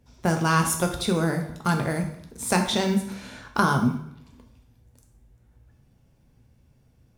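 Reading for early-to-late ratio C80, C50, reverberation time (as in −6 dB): 11.0 dB, 8.0 dB, 0.70 s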